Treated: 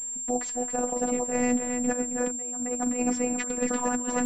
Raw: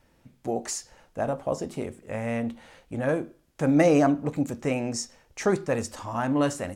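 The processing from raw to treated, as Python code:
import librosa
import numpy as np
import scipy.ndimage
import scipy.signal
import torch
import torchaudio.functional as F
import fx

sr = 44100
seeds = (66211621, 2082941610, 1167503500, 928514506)

y = fx.echo_wet_lowpass(x, sr, ms=427, feedback_pct=38, hz=2900.0, wet_db=-7.0)
y = fx.over_compress(y, sr, threshold_db=-28.0, ratio=-0.5)
y = fx.robotise(y, sr, hz=246.0)
y = fx.stretch_vocoder(y, sr, factor=0.63)
y = fx.pwm(y, sr, carrier_hz=7400.0)
y = F.gain(torch.from_numpy(y), 3.0).numpy()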